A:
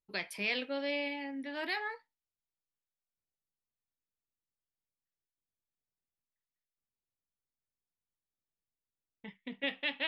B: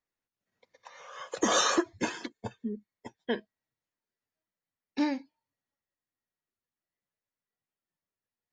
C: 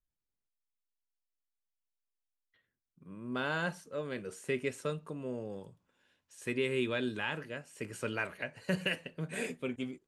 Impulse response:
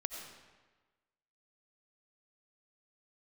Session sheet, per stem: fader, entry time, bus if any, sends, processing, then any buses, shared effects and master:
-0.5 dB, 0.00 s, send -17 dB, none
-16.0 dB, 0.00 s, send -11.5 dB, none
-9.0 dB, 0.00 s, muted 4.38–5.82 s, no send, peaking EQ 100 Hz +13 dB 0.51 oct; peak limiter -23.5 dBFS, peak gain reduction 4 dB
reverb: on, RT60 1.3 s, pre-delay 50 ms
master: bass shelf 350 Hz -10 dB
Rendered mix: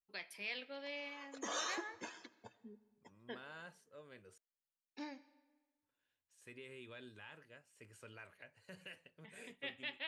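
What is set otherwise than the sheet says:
stem A -0.5 dB -> -10.0 dB; stem C -9.0 dB -> -15.5 dB

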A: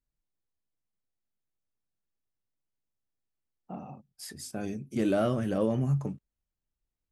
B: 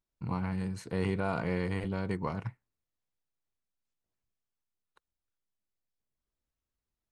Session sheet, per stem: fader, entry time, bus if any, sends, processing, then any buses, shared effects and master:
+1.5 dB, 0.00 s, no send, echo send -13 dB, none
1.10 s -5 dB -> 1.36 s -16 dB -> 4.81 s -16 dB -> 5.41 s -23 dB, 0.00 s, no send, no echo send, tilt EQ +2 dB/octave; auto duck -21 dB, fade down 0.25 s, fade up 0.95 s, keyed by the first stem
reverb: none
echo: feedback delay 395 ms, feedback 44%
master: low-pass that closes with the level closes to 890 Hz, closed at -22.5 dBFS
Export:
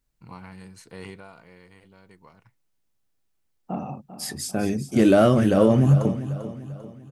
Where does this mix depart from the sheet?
stem A +1.5 dB -> +10.5 dB; master: missing low-pass that closes with the level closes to 890 Hz, closed at -22.5 dBFS

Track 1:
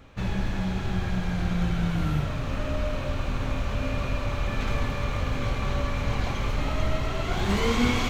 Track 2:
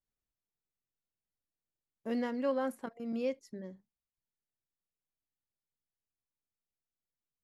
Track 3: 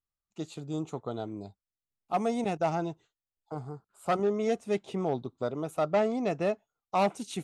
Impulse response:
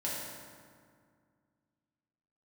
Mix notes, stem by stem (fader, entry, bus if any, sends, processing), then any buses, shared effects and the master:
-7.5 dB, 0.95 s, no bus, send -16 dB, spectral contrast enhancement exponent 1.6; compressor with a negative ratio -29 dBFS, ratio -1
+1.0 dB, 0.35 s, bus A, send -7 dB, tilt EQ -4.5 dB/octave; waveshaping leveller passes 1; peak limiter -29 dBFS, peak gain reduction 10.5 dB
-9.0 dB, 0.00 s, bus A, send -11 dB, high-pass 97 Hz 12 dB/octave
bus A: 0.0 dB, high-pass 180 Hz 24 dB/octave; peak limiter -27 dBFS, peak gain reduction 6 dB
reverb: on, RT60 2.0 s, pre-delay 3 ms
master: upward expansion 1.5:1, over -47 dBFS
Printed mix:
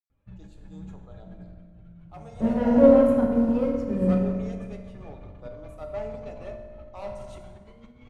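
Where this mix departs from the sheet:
stem 1: entry 0.95 s -> 0.10 s; stem 2 +1.0 dB -> +10.5 dB; reverb return +8.0 dB

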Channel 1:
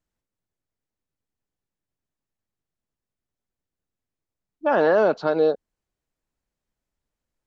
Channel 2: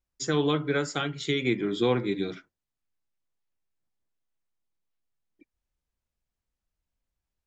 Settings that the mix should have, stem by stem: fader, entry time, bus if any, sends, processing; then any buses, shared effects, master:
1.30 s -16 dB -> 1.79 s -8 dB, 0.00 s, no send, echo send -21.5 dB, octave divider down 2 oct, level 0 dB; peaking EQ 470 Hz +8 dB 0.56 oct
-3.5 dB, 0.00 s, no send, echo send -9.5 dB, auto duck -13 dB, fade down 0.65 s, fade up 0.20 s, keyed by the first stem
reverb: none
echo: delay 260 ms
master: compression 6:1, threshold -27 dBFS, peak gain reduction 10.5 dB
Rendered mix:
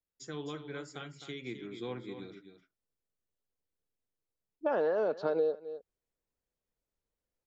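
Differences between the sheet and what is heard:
stem 1: missing octave divider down 2 oct, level 0 dB; stem 2 -3.5 dB -> -15.5 dB

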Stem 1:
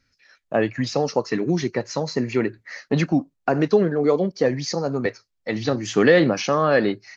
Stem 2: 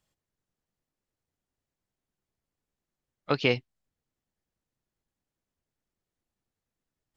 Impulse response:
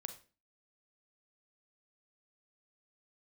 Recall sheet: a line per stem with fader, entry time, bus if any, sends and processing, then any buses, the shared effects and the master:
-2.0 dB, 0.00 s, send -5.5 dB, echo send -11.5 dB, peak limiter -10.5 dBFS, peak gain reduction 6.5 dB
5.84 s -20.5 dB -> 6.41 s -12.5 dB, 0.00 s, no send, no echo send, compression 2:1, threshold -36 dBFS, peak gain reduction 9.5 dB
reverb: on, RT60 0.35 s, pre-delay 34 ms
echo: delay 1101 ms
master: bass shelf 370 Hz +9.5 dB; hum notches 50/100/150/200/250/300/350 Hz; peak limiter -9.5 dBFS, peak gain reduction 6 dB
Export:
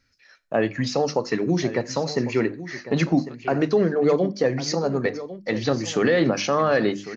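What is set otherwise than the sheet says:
stem 2: missing compression 2:1, threshold -36 dBFS, peak gain reduction 9.5 dB; master: missing bass shelf 370 Hz +9.5 dB

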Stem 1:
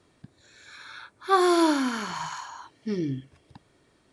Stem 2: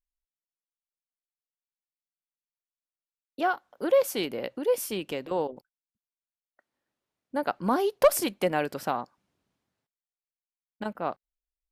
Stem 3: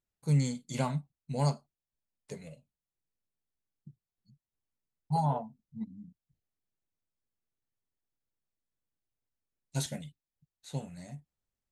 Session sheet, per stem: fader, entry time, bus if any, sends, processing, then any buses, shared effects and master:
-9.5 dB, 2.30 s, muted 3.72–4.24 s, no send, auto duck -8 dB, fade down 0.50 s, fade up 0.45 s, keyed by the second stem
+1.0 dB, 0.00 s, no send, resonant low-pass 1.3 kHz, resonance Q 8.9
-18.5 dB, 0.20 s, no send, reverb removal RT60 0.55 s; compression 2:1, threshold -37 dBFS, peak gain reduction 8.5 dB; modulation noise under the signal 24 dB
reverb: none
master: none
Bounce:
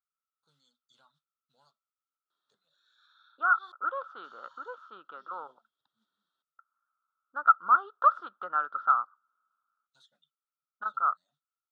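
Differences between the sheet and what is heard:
stem 3 -18.5 dB -> -11.0 dB; master: extra two resonant band-passes 2.2 kHz, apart 1.4 oct

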